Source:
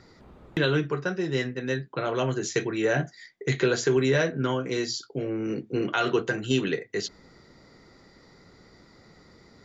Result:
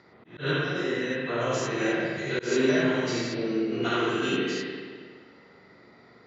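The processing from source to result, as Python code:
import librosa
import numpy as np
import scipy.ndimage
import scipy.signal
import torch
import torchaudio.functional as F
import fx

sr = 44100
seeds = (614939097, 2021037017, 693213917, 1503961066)

y = fx.spec_steps(x, sr, hold_ms=200)
y = fx.stretch_vocoder_free(y, sr, factor=0.65)
y = scipy.signal.sosfilt(scipy.signal.butter(2, 110.0, 'highpass', fs=sr, output='sos'), y)
y = fx.rev_spring(y, sr, rt60_s=1.8, pass_ms=(42, 59), chirp_ms=50, drr_db=-3.5)
y = fx.auto_swell(y, sr, attack_ms=146.0)
y = fx.env_lowpass(y, sr, base_hz=2900.0, full_db=-21.5)
y = fx.tilt_eq(y, sr, slope=1.5)
y = y * librosa.db_to_amplitude(2.5)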